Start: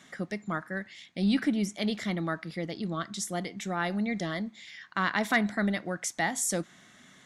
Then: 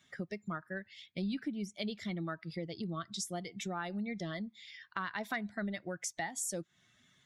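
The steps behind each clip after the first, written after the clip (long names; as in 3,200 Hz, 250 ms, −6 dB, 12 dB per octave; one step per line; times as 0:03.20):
spectral dynamics exaggerated over time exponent 1.5
downward compressor 4 to 1, threshold −42 dBFS, peak gain reduction 17 dB
level +5 dB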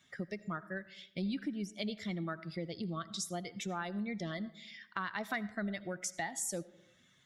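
comb and all-pass reverb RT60 0.85 s, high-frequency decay 0.45×, pre-delay 40 ms, DRR 17 dB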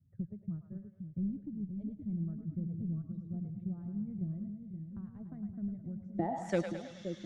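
harmonic generator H 7 −26 dB, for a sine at −19.5 dBFS
low-pass filter sweep 110 Hz → 5,300 Hz, 0:06.00–0:06.68
echo with a time of its own for lows and highs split 520 Hz, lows 523 ms, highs 106 ms, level −6.5 dB
level +11 dB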